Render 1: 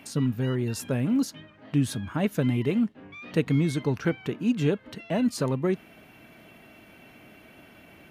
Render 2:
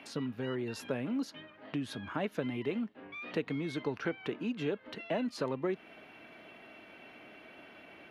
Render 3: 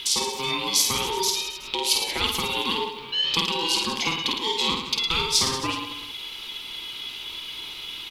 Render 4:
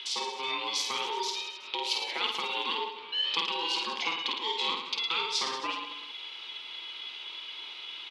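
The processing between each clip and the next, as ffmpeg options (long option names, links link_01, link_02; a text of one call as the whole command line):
ffmpeg -i in.wav -filter_complex "[0:a]equalizer=frequency=11000:width_type=o:width=0.34:gain=12,acompressor=threshold=-28dB:ratio=3,acrossover=split=270 4900:gain=0.224 1 0.0631[link_01][link_02][link_03];[link_01][link_02][link_03]amix=inputs=3:normalize=0" out.wav
ffmpeg -i in.wav -af "aeval=exprs='val(0)*sin(2*PI*660*n/s)':channel_layout=same,aecho=1:1:50|110|182|268.4|372.1:0.631|0.398|0.251|0.158|0.1,aexciter=amount=9.2:drive=7.1:freq=2600,volume=6dB" out.wav
ffmpeg -i in.wav -af "highpass=470,lowpass=3800,volume=-4dB" out.wav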